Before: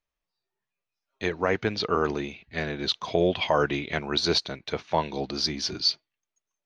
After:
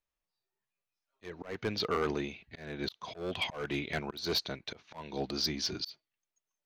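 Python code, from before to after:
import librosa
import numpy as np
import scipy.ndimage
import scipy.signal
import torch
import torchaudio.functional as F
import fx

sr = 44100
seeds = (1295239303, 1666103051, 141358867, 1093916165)

y = np.clip(10.0 ** (20.0 / 20.0) * x, -1.0, 1.0) / 10.0 ** (20.0 / 20.0)
y = fx.auto_swell(y, sr, attack_ms=277.0)
y = y * 10.0 ** (-4.0 / 20.0)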